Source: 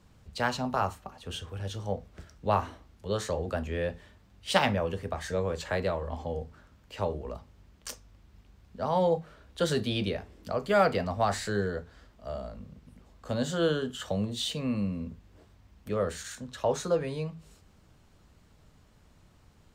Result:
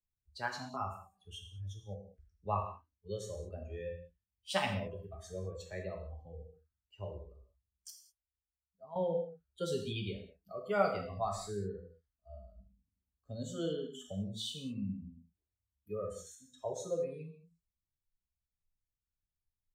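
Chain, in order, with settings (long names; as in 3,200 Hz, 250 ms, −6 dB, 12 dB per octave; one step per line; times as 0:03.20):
spectral dynamics exaggerated over time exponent 1.5
noise reduction from a noise print of the clip's start 15 dB
0:07.90–0:08.96: tuned comb filter 670 Hz, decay 0.17 s, mix 80%
reverb whose tail is shaped and stops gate 230 ms falling, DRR 1.5 dB
level −7.5 dB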